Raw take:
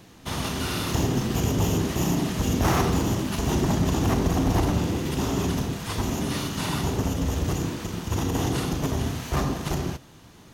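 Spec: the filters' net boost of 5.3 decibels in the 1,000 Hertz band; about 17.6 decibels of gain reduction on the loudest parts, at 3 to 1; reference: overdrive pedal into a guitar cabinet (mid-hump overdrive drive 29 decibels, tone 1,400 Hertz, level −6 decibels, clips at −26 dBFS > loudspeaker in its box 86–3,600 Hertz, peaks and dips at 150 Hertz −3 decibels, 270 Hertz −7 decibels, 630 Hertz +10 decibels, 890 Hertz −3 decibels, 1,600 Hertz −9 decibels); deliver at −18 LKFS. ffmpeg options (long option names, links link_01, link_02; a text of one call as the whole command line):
ffmpeg -i in.wav -filter_complex "[0:a]equalizer=frequency=1000:width_type=o:gain=7,acompressor=threshold=-42dB:ratio=3,asplit=2[link_01][link_02];[link_02]highpass=frequency=720:poles=1,volume=29dB,asoftclip=type=tanh:threshold=-26dB[link_03];[link_01][link_03]amix=inputs=2:normalize=0,lowpass=frequency=1400:poles=1,volume=-6dB,highpass=86,equalizer=frequency=150:width_type=q:width=4:gain=-3,equalizer=frequency=270:width_type=q:width=4:gain=-7,equalizer=frequency=630:width_type=q:width=4:gain=10,equalizer=frequency=890:width_type=q:width=4:gain=-3,equalizer=frequency=1600:width_type=q:width=4:gain=-9,lowpass=frequency=3600:width=0.5412,lowpass=frequency=3600:width=1.3066,volume=17dB" out.wav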